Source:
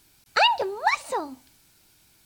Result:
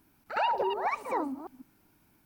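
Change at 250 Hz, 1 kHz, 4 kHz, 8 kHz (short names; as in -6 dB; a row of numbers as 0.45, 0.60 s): +2.5 dB, -5.5 dB, -17.5 dB, under -15 dB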